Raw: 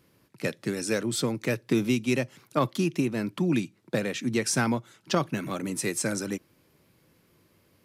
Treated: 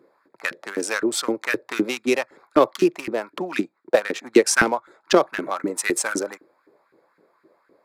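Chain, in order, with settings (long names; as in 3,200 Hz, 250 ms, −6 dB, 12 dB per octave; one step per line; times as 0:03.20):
adaptive Wiener filter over 15 samples
0:03.59–0:04.66: transient designer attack +4 dB, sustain −4 dB
auto-filter high-pass saw up 3.9 Hz 300–1,700 Hz
level +6.5 dB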